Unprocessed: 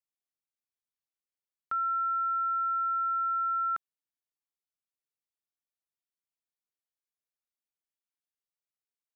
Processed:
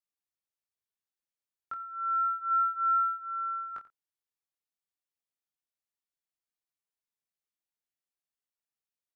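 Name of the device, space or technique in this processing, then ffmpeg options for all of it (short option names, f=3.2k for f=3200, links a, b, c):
double-tracked vocal: -filter_complex "[0:a]asplit=2[a][b];[b]adelay=29,volume=-10.5dB[c];[a][c]amix=inputs=2:normalize=0,flanger=delay=19.5:depth=2.4:speed=0.29,asplit=3[d][e][f];[d]afade=t=out:st=2.5:d=0.02[g];[e]equalizer=f=1.5k:t=o:w=1.7:g=2.5,afade=t=in:st=2.5:d=0.02,afade=t=out:st=3.16:d=0.02[h];[f]afade=t=in:st=3.16:d=0.02[i];[g][h][i]amix=inputs=3:normalize=0,aecho=1:1:88:0.133"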